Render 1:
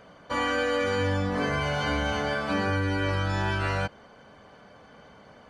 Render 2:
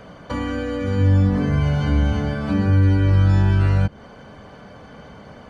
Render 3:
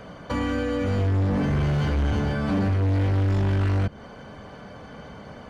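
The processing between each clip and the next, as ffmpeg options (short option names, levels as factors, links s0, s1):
-filter_complex "[0:a]lowshelf=f=280:g=8.5,acrossover=split=300[s0][s1];[s1]acompressor=threshold=0.0158:ratio=10[s2];[s0][s2]amix=inputs=2:normalize=0,volume=2.24"
-af "volume=10,asoftclip=hard,volume=0.1"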